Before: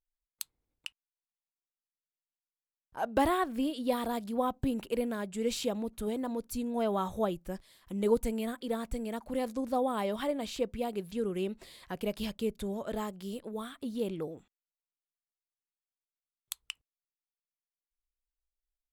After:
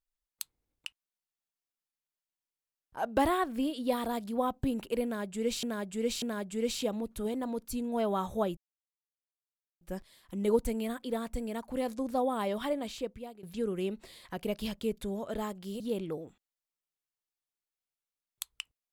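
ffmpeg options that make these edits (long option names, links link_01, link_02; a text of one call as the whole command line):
ffmpeg -i in.wav -filter_complex "[0:a]asplit=6[link_01][link_02][link_03][link_04][link_05][link_06];[link_01]atrim=end=5.632[link_07];[link_02]atrim=start=5.038:end=5.632[link_08];[link_03]atrim=start=5.038:end=7.39,asetpts=PTS-STARTPTS,afade=type=out:start_time=2.348:duration=0.004:curve=hsin,apad=pad_dur=1.24[link_09];[link_04]atrim=start=7.39:end=11.01,asetpts=PTS-STARTPTS,afade=type=in:duration=0.004:curve=hsin,afade=type=out:start_time=2.94:duration=0.68:silence=0.1[link_10];[link_05]atrim=start=11.01:end=13.382,asetpts=PTS-STARTPTS,afade=type=in:duration=0.004:curve=hsin:silence=0.1[link_11];[link_06]atrim=start=13.898[link_12];[link_07][link_08]acrossfade=duration=0.004:curve1=hsin:curve2=hsin[link_13];[link_09][link_10][link_11]concat=n=3:v=0:a=1[link_14];[link_13][link_14]acrossfade=duration=0.004:curve1=hsin:curve2=hsin[link_15];[link_15][link_12]acrossfade=duration=0.004:curve1=hsin:curve2=hsin" out.wav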